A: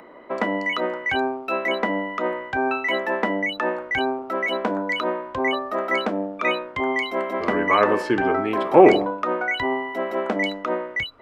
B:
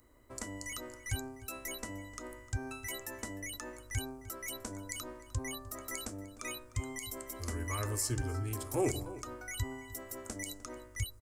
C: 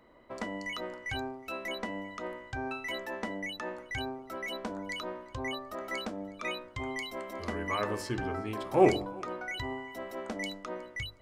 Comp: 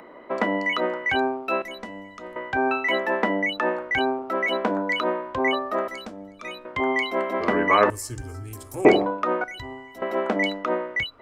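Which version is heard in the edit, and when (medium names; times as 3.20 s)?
A
1.62–2.36 s: from C
5.88–6.65 s: from C
7.90–8.85 s: from B
9.44–10.02 s: from C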